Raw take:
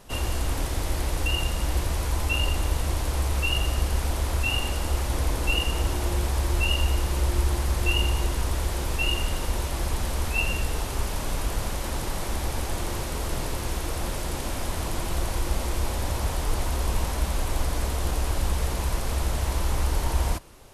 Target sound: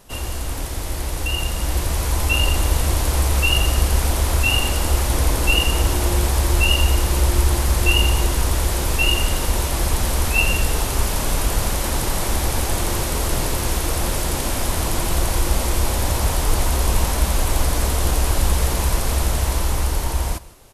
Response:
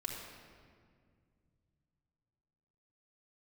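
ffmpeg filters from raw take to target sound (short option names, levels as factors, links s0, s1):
-filter_complex "[0:a]asplit=2[s0][s1];[s1]aecho=0:1:155:0.106[s2];[s0][s2]amix=inputs=2:normalize=0,dynaudnorm=f=400:g=9:m=2.37,highshelf=f=6800:g=6"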